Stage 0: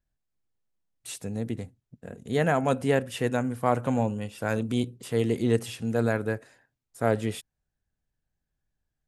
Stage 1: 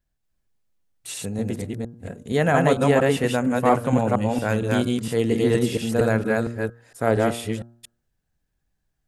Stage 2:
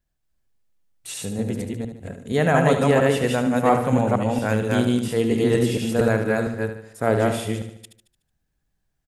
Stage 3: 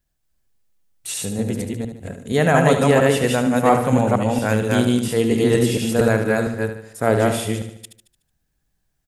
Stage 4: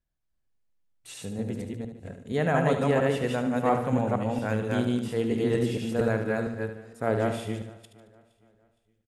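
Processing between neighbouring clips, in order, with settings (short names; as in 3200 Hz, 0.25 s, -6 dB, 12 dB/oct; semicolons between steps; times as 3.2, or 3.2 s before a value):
reverse delay 0.231 s, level -1 dB; de-hum 117.3 Hz, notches 14; gain +4 dB
feedback echo 74 ms, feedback 49%, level -9 dB
high shelf 4800 Hz +5 dB; gain +2.5 dB
LPF 2900 Hz 6 dB/oct; feedback echo 0.464 s, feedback 40%, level -23 dB; gain -8.5 dB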